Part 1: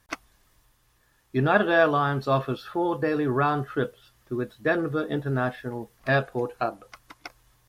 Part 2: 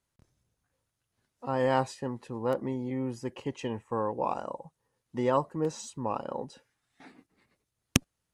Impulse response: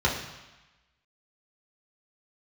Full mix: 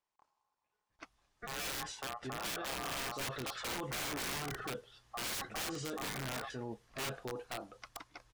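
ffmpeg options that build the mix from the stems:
-filter_complex "[0:a]acontrast=43,adynamicequalizer=threshold=0.0178:dfrequency=2900:dqfactor=0.7:tfrequency=2900:tqfactor=0.7:attack=5:release=100:ratio=0.375:range=2.5:mode=boostabove:tftype=highshelf,adelay=900,volume=-11.5dB,afade=type=in:start_time=2.65:duration=0.61:silence=0.334965[link_01];[1:a]dynaudnorm=framelen=220:gausssize=13:maxgain=16dB,aeval=exprs='val(0)*sin(2*PI*950*n/s)':channel_layout=same,volume=-5dB[link_02];[link_01][link_02]amix=inputs=2:normalize=0,lowpass=6800,aeval=exprs='(mod(15*val(0)+1,2)-1)/15':channel_layout=same,alimiter=level_in=9.5dB:limit=-24dB:level=0:latency=1:release=20,volume=-9.5dB"

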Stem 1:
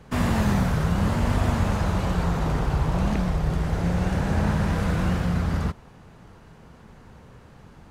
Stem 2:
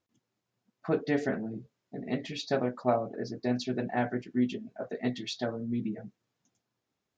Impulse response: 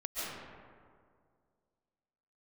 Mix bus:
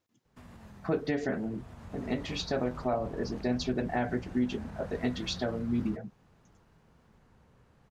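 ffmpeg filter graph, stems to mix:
-filter_complex "[0:a]alimiter=limit=-19.5dB:level=0:latency=1:release=372,adelay=250,volume=-14.5dB,afade=type=in:start_time=1.56:duration=0.62:silence=0.398107[link_01];[1:a]volume=2dB[link_02];[link_01][link_02]amix=inputs=2:normalize=0,alimiter=limit=-19.5dB:level=0:latency=1:release=118"

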